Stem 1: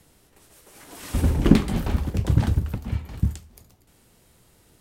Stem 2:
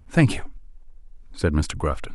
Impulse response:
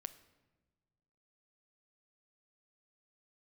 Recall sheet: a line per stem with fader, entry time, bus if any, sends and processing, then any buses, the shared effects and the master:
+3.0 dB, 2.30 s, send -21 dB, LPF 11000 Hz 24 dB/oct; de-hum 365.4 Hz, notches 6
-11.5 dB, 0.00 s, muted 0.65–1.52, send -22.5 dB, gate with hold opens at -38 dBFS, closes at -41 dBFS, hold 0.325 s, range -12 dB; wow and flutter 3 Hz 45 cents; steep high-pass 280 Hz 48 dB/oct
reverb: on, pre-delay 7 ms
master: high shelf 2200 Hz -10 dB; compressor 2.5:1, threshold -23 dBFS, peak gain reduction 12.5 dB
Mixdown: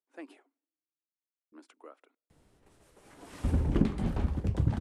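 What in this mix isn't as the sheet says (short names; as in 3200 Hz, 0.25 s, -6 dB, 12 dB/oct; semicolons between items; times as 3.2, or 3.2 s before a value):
stem 1 +3.0 dB -> -5.5 dB; stem 2 -11.5 dB -> -23.5 dB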